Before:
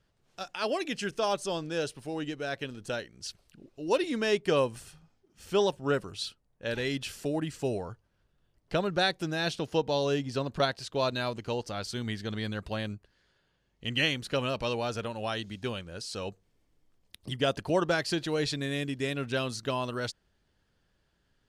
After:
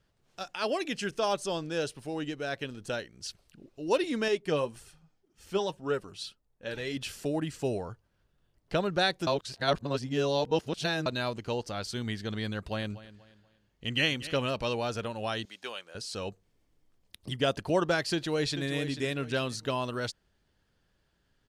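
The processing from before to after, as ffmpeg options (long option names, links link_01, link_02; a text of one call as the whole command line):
ffmpeg -i in.wav -filter_complex "[0:a]asettb=1/sr,asplit=3[link_01][link_02][link_03];[link_01]atrim=end=4.284[link_04];[link_02]atrim=start=4.28:end=6.97,asetpts=PTS-STARTPTS,afade=type=in:duration=0.004:curve=qsin,afade=type=out:start_time=2.686:duration=0.004:curve=qsin,flanger=delay=2.2:depth=4.4:regen=46:speed=1.8:shape=sinusoidal[link_05];[link_03]atrim=start=6.966[link_06];[link_04][link_05]acrossfade=duration=0.004:curve1=hsin:curve2=qsin[link_07];[link_07][link_06]acrossfade=duration=0.004:curve1=qsin:curve2=hsin,asettb=1/sr,asplit=3[link_08][link_09][link_10];[link_08]atrim=end=12.574[link_11];[link_09]atrim=start=12.57:end=14.51,asetpts=PTS-STARTPTS,afade=type=in:duration=0.004:curve=qsin,afade=type=out:start_time=1.936:duration=0.004:curve=qsin,aecho=1:1:241|482|723:0.15|0.0509|0.0173,atrim=end_sample=85554[link_12];[link_10]atrim=start=14.506[link_13];[link_11][link_12]acrossfade=duration=0.004:curve1=hsin:curve2=qsin[link_14];[link_14][link_13]acrossfade=duration=0.004:curve1=qsin:curve2=hsin,asettb=1/sr,asplit=3[link_15][link_16][link_17];[link_15]atrim=end=15.454[link_18];[link_16]atrim=start=15.45:end=15.95,asetpts=PTS-STARTPTS,afade=type=in:duration=0.004:curve=qsin,afade=type=out:start_time=0.496:duration=0.004:curve=qsin,highpass=620[link_19];[link_17]atrim=start=15.946[link_20];[link_18][link_19]acrossfade=duration=0.004:curve1=hsin:curve2=qsin[link_21];[link_21][link_20]acrossfade=duration=0.004:curve1=qsin:curve2=hsin,asplit=2[link_22][link_23];[link_23]afade=type=in:start_time=18.12:duration=0.01,afade=type=out:start_time=18.67:duration=0.01,aecho=0:1:440|880|1320:0.316228|0.0948683|0.0284605[link_24];[link_22][link_24]amix=inputs=2:normalize=0,asplit=3[link_25][link_26][link_27];[link_25]atrim=end=9.272[link_28];[link_26]atrim=start=9.268:end=11.062,asetpts=PTS-STARTPTS,areverse[link_29];[link_27]atrim=start=11.058[link_30];[link_28][link_29]acrossfade=duration=0.004:curve1=hsin:curve2=hsin[link_31];[link_31][link_30]acrossfade=duration=0.004:curve1=hsin:curve2=hsin" out.wav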